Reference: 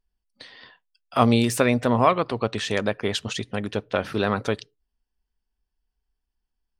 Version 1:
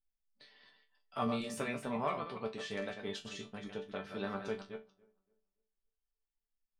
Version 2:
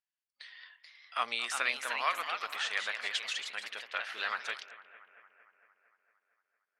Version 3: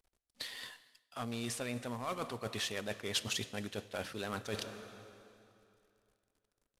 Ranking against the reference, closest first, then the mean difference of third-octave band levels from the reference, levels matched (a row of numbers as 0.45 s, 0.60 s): 1, 3, 2; 5.0 dB, 10.0 dB, 13.0 dB